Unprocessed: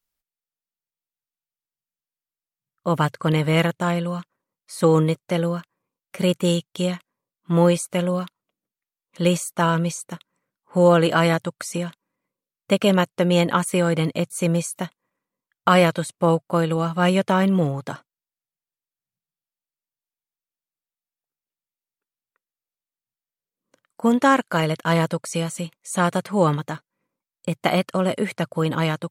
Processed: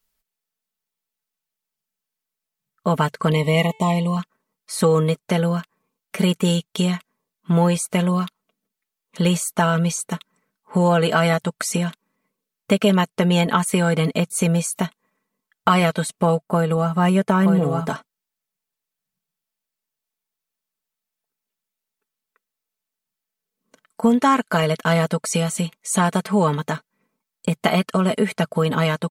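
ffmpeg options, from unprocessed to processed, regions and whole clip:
-filter_complex "[0:a]asettb=1/sr,asplit=3[a][b][c];[a]atrim=end=3.314[d];[b]atrim=start=3.31:end=4.17,asetpts=PTS-STARTPTS,afade=t=in:d=0.004:c=qsin,afade=t=out:st=0.856:d=0.004:c=qsin,asuperstop=centerf=1500:order=20:qfactor=2.4,bandreject=f=439.4:t=h:w=4,bandreject=f=878.8:t=h:w=4,bandreject=f=1.3182k:t=h:w=4,bandreject=f=1.7576k:t=h:w=4,bandreject=f=2.197k:t=h:w=4,bandreject=f=2.6364k:t=h:w=4,bandreject=f=3.0758k:t=h:w=4,bandreject=f=3.5152k:t=h:w=4,bandreject=f=3.9546k:t=h:w=4,bandreject=f=4.394k:t=h:w=4,bandreject=f=4.8334k:t=h:w=4,bandreject=f=5.2728k:t=h:w=4,bandreject=f=5.7122k:t=h:w=4,bandreject=f=6.1516k:t=h:w=4,bandreject=f=6.591k:t=h:w=4,bandreject=f=7.0304k:t=h:w=4,bandreject=f=7.4698k:t=h:w=4,bandreject=f=7.9092k:t=h:w=4,bandreject=f=8.3486k:t=h:w=4,bandreject=f=8.788k:t=h:w=4,bandreject=f=9.2274k:t=h:w=4,bandreject=f=9.6668k:t=h:w=4[e];[c]atrim=start=4.166[f];[d][e]acrossfade=d=0.004:c1=hsin:c2=qsin[g];[g][f]acrossfade=d=0.004:c1=qsin:c2=hsin,asettb=1/sr,asplit=3[h][i][j];[h]atrim=end=16.454[k];[i]atrim=start=16.45:end=17.89,asetpts=PTS-STARTPTS,afade=t=in:d=0.004:c=qsin,afade=t=out:st=1.436:d=0.004:c=qsin,equalizer=f=3.8k:t=o:w=1.6:g=-7.5,aecho=1:1:922:0.596,atrim=end_sample=63504[l];[j]atrim=start=17.886[m];[k][l]acrossfade=d=0.004:c1=hsin:c2=qsin[n];[n][m]acrossfade=d=0.004:c1=qsin:c2=hsin,aecho=1:1:4.6:0.61,acompressor=threshold=-25dB:ratio=2,volume=6dB"

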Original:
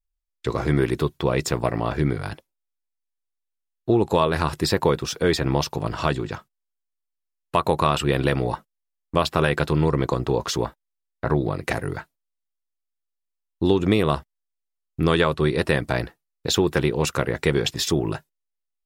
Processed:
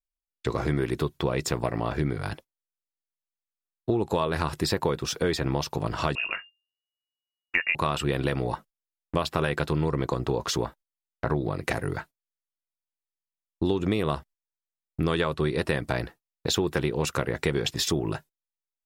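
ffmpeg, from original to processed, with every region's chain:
-filter_complex "[0:a]asettb=1/sr,asplit=3[a][b][c];[a]atrim=end=6.154[d];[b]atrim=start=6.15:end=7.75,asetpts=PTS-STARTPTS,afade=t=in:d=0.004:c=qsin,afade=t=out:st=1.596:d=0.004:c=qsin,highshelf=f=2.2k:g=9.5,bandreject=f=45.95:t=h:w=4,bandreject=f=91.9:t=h:w=4,lowpass=f=2.5k:t=q:w=0.5098,lowpass=f=2.5k:t=q:w=0.6013,lowpass=f=2.5k:t=q:w=0.9,lowpass=f=2.5k:t=q:w=2.563,afreqshift=-2900[e];[c]atrim=start=7.746[f];[d][e]acrossfade=d=0.004:c1=hsin:c2=qsin[g];[g][f]acrossfade=d=0.004:c1=qsin:c2=hsin,agate=range=-13dB:threshold=-43dB:ratio=16:detection=peak,acompressor=threshold=-24dB:ratio=2.5"

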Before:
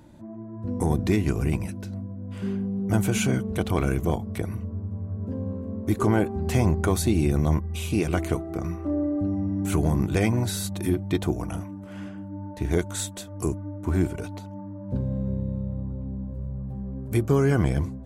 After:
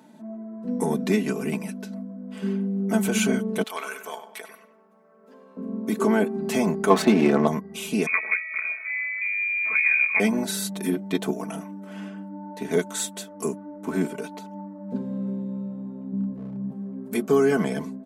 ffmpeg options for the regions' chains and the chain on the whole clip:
-filter_complex "[0:a]asettb=1/sr,asplit=3[a][b][c];[a]atrim=end=3.634[d];[b]atrim=start=3.63:end=5.57,asetpts=PTS-STARTPTS,afade=t=in:d=0.004:c=qsin,afade=t=out:st=1.936:d=0.004:c=qsin,highpass=1k,asplit=2[e][f];[f]adelay=97,lowpass=f=3.2k:p=1,volume=-9.5dB,asplit=2[g][h];[h]adelay=97,lowpass=f=3.2k:p=1,volume=0.4,asplit=2[i][j];[j]adelay=97,lowpass=f=3.2k:p=1,volume=0.4,asplit=2[k][l];[l]adelay=97,lowpass=f=3.2k:p=1,volume=0.4[m];[e][g][i][k][m]amix=inputs=5:normalize=0,atrim=end_sample=85554[n];[c]atrim=start=5.566[o];[d][n]acrossfade=d=0.004:c1=hsin:c2=qsin[p];[p][o]acrossfade=d=0.004:c1=qsin:c2=hsin,asettb=1/sr,asplit=3[q][r][s];[q]atrim=end=6.904[t];[r]atrim=start=6.9:end=7.47,asetpts=PTS-STARTPTS,afade=t=in:d=0.004:c=qsin,afade=t=out:st=0.566:d=0.004:c=qsin,adynamicsmooth=sensitivity=8:basefreq=1.2k,equalizer=f=1k:w=0.36:g=12[u];[s]atrim=start=7.466[v];[t][u]acrossfade=d=0.004:c1=hsin:c2=qsin[w];[w][v]acrossfade=d=0.004:c1=qsin:c2=hsin,asettb=1/sr,asplit=3[x][y][z];[x]atrim=end=8.064[aa];[y]atrim=start=8.06:end=10.2,asetpts=PTS-STARTPTS,afade=t=in:d=0.004:c=qsin,afade=t=out:st=2.136:d=0.004:c=qsin,lowpass=f=2.2k:t=q:w=0.5098,lowpass=f=2.2k:t=q:w=0.6013,lowpass=f=2.2k:t=q:w=0.9,lowpass=f=2.2k:t=q:w=2.563,afreqshift=-2600,bandreject=f=60:t=h:w=6,bandreject=f=120:t=h:w=6,bandreject=f=180:t=h:w=6,bandreject=f=240:t=h:w=6,bandreject=f=300:t=h:w=6,bandreject=f=360:t=h:w=6[ab];[z]atrim=start=10.196[ac];[aa][ab]acrossfade=d=0.004:c1=hsin:c2=qsin[ad];[ad][ac]acrossfade=d=0.004:c1=qsin:c2=hsin,asettb=1/sr,asplit=3[ae][af][ag];[ae]atrim=end=16.124[ah];[af]atrim=start=16.12:end=16.72,asetpts=PTS-STARTPTS,afade=t=in:d=0.004:c=qsin,afade=t=out:st=0.596:d=0.004:c=qsin,bass=f=250:g=10,treble=f=4k:g=-10,asoftclip=type=hard:threshold=-17.5dB[ai];[ag]atrim=start=16.716[aj];[ah][ai]acrossfade=d=0.004:c1=hsin:c2=qsin[ak];[ak][aj]acrossfade=d=0.004:c1=qsin:c2=hsin,highpass=f=190:w=0.5412,highpass=f=190:w=1.3066,aecho=1:1:4.6:0.82"

